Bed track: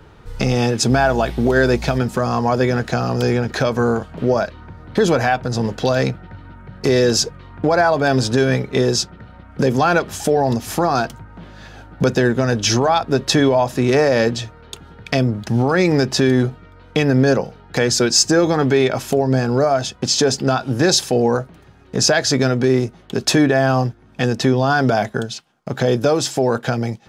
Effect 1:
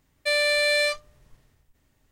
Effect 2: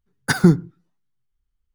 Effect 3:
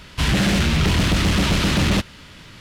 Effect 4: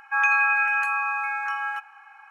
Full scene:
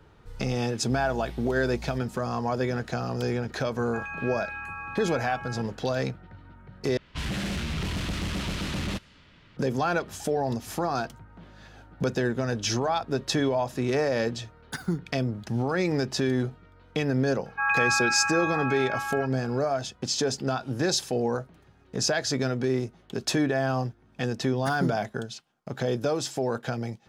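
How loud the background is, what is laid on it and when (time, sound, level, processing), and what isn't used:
bed track -10.5 dB
3.82 s: add 4 -11 dB + peak limiter -18 dBFS
6.97 s: replace with 3 -12.5 dB + level-controlled noise filter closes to 3 kHz, open at -16.5 dBFS
14.44 s: add 2 -15.5 dB
17.46 s: add 4 -1.5 dB + distance through air 290 m
24.37 s: add 2 -16.5 dB
not used: 1

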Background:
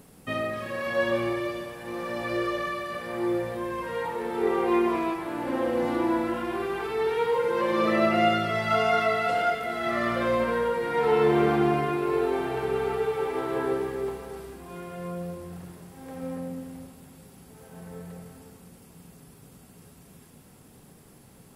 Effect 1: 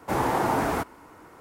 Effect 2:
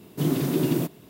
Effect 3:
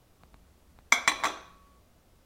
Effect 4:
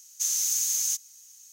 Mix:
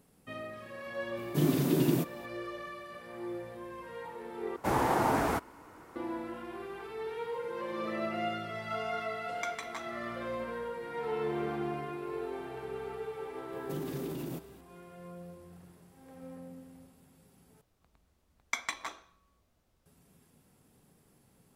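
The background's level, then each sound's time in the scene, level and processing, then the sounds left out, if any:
background -12.5 dB
1.17 s: add 2 -3.5 dB
4.56 s: replace with 1 -3.5 dB
8.51 s: add 3 -14 dB + peak limiter -8.5 dBFS
13.52 s: add 2 -8 dB + peak limiter -23 dBFS
17.61 s: replace with 3 -11.5 dB
not used: 4

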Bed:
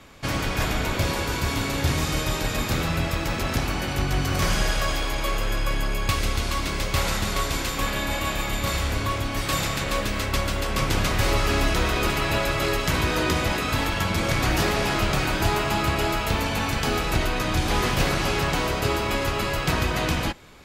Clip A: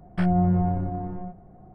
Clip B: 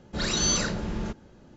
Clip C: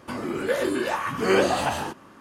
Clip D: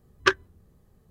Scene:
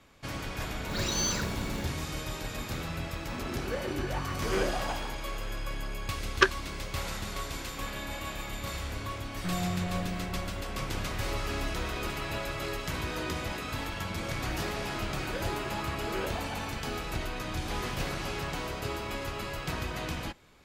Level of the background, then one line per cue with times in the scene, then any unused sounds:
bed -11 dB
0.75 s: add B -5.5 dB + short-mantissa float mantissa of 2-bit
3.23 s: add C -10.5 dB + local Wiener filter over 9 samples
6.15 s: add D -1.5 dB
9.26 s: add A -11.5 dB + echo from a far wall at 85 m, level -7 dB
14.85 s: add C -16 dB

